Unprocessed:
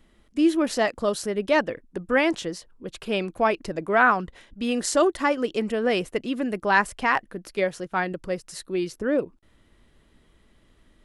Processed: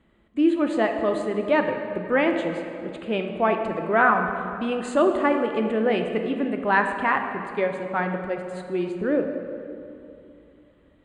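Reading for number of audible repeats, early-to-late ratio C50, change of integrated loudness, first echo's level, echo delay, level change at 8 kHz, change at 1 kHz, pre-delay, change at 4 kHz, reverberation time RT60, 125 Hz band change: none, 6.0 dB, +0.5 dB, none, none, under -10 dB, +1.0 dB, 7 ms, -5.0 dB, 2.7 s, +2.5 dB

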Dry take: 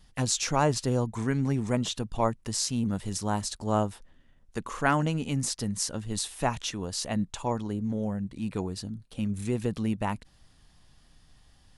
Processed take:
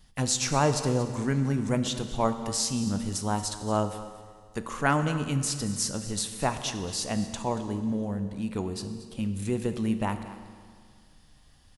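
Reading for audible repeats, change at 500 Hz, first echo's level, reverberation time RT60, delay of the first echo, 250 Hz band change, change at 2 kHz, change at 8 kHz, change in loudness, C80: 1, +1.0 dB, -16.5 dB, 2.0 s, 0.232 s, +1.0 dB, +1.0 dB, +1.5 dB, +1.0 dB, 10.0 dB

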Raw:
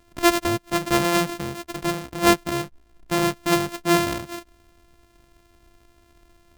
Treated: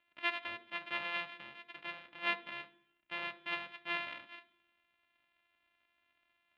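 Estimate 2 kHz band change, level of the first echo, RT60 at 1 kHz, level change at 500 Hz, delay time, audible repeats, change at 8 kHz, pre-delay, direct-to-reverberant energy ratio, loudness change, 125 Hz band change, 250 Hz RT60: -10.0 dB, none, 0.60 s, -26.0 dB, none, none, under -40 dB, 3 ms, 6.5 dB, -17.0 dB, -34.5 dB, 0.95 s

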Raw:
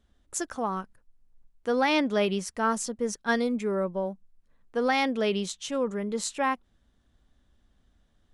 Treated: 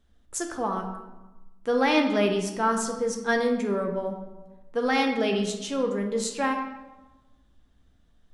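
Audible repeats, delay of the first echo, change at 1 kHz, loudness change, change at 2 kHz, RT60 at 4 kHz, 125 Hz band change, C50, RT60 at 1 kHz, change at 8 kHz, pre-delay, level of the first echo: none, none, +1.5 dB, +2.0 dB, +1.5 dB, 0.70 s, +2.5 dB, 6.0 dB, 1.1 s, +1.0 dB, 4 ms, none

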